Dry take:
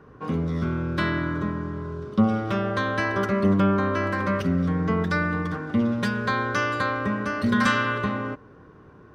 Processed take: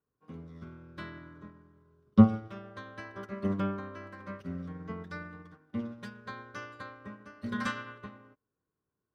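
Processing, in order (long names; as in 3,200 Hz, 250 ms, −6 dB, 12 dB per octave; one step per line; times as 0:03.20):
0:02.05–0:02.48: low-shelf EQ 150 Hz +10 dB
expander for the loud parts 2.5 to 1, over −37 dBFS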